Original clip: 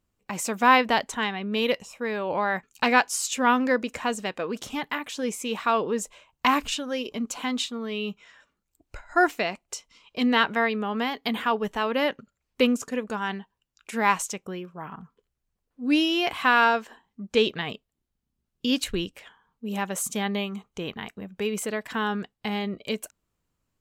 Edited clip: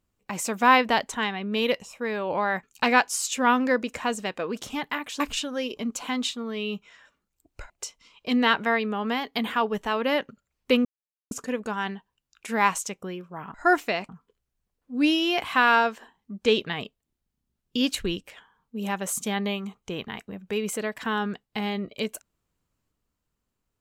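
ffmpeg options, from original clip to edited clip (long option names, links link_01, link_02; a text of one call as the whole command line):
ffmpeg -i in.wav -filter_complex "[0:a]asplit=6[link_01][link_02][link_03][link_04][link_05][link_06];[link_01]atrim=end=5.202[link_07];[link_02]atrim=start=6.548:end=9.052[link_08];[link_03]atrim=start=9.598:end=12.75,asetpts=PTS-STARTPTS,afade=type=out:start_time=3.148:duration=0.004:curve=hsin,apad=pad_dur=0.46[link_09];[link_04]atrim=start=12.75:end=14.982,asetpts=PTS-STARTPTS,afade=type=in:duration=0.004:curve=hsin[link_10];[link_05]atrim=start=9.048:end=9.602[link_11];[link_06]atrim=start=14.978[link_12];[link_07][link_08]acrossfade=duration=0.004:curve1=hsin:curve2=hsin[link_13];[link_09][link_10]concat=n=2:v=0:a=1[link_14];[link_13][link_14]acrossfade=duration=0.004:curve1=hsin:curve2=hsin[link_15];[link_15][link_11]acrossfade=duration=0.004:curve1=hsin:curve2=hsin[link_16];[link_16][link_12]acrossfade=duration=0.004:curve1=hsin:curve2=hsin" out.wav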